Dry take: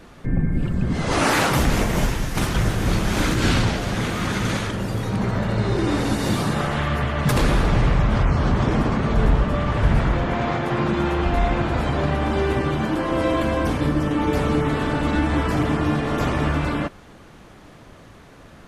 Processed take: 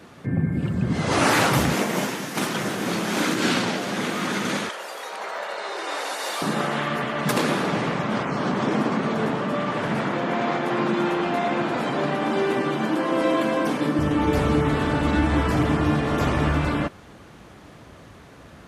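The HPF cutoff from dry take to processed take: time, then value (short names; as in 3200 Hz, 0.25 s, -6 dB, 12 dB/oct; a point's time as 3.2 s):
HPF 24 dB/oct
90 Hz
from 1.74 s 190 Hz
from 4.69 s 550 Hz
from 6.42 s 180 Hz
from 13.99 s 47 Hz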